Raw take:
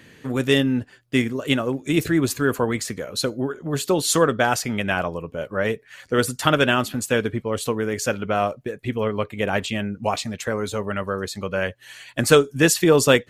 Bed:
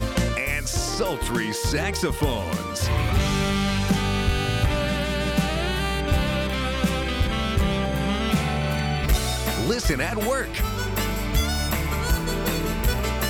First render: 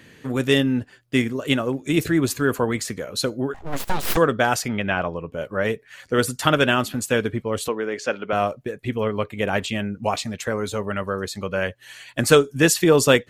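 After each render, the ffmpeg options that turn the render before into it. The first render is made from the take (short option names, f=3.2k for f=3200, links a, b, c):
-filter_complex "[0:a]asettb=1/sr,asplit=3[a][b][c];[a]atrim=end=3.544[d];[b]atrim=start=3.54:end=4.17,asetpts=PTS-STARTPTS,afade=t=in:d=0.004:c=qsin,afade=t=out:st=0.626:d=0.004:c=qsin,aeval=exprs='abs(val(0))':c=same[e];[c]atrim=start=4.166[f];[d][e]acrossfade=d=0.004:c1=hsin:c2=qsin[g];[g][f]acrossfade=d=0.004:c1=qsin:c2=hsin,asettb=1/sr,asplit=3[h][i][j];[h]atrim=end=4.684[k];[i]atrim=start=4.68:end=5.32,asetpts=PTS-STARTPTS,afade=t=in:d=0.004:c=qsin,afade=t=out:st=0.636:d=0.004:c=qsin,lowpass=3.7k[l];[j]atrim=start=5.316[m];[k][l]acrossfade=d=0.004:c1=hsin:c2=qsin[n];[n][m]acrossfade=d=0.004:c1=qsin:c2=hsin,asettb=1/sr,asplit=3[o][p][q];[o]atrim=end=7.684[r];[p]atrim=start=7.68:end=8.33,asetpts=PTS-STARTPTS,afade=t=in:d=0.004:c=qsin,afade=t=out:st=0.646:d=0.004:c=qsin,highpass=290,lowpass=4.2k[s];[q]atrim=start=8.326[t];[r][s]acrossfade=d=0.004:c1=hsin:c2=qsin[u];[u][t]acrossfade=d=0.004:c1=qsin:c2=hsin"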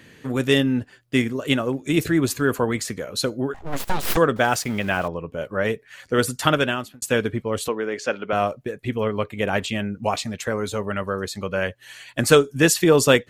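-filter_complex "[0:a]asettb=1/sr,asplit=3[a][b][c];[a]atrim=end=4.364[d];[b]atrim=start=4.36:end=5.08,asetpts=PTS-STARTPTS,afade=t=in:d=0.004:c=qsin,afade=t=out:st=0.716:d=0.004:c=qsin,aeval=exprs='val(0)*gte(abs(val(0)),0.0141)':c=same[e];[c]atrim=start=5.076[f];[d][e]acrossfade=d=0.004:c1=hsin:c2=qsin[g];[g][f]acrossfade=d=0.004:c1=qsin:c2=hsin,asplit=2[h][i];[h]atrim=end=7.02,asetpts=PTS-STARTPTS,afade=t=out:st=6.48:d=0.54[j];[i]atrim=start=7.02,asetpts=PTS-STARTPTS,afade=t=in:d=0.004:c=hsin[k];[j][k]concat=n=2:v=0:a=1"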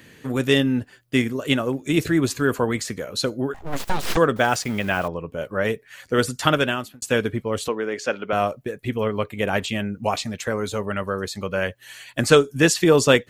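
-filter_complex "[0:a]acrossover=split=8000[a][b];[b]acompressor=threshold=-47dB:ratio=4:attack=1:release=60[c];[a][c]amix=inputs=2:normalize=0,highshelf=f=12k:g=10"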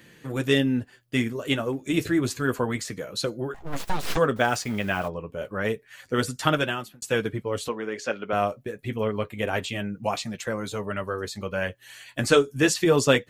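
-af "flanger=delay=5.7:depth=4.4:regen=-43:speed=0.29:shape=sinusoidal"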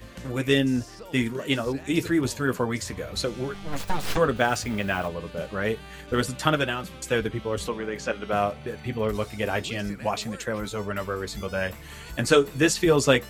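-filter_complex "[1:a]volume=-18.5dB[a];[0:a][a]amix=inputs=2:normalize=0"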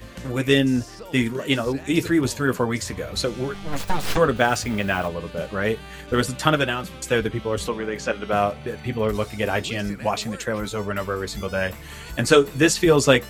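-af "volume=3.5dB"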